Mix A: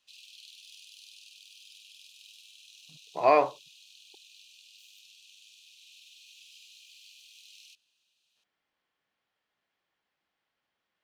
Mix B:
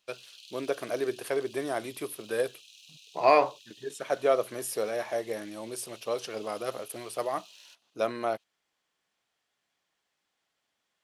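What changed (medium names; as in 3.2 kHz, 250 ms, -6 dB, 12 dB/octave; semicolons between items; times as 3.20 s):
first voice: unmuted; second voice: remove distance through air 170 m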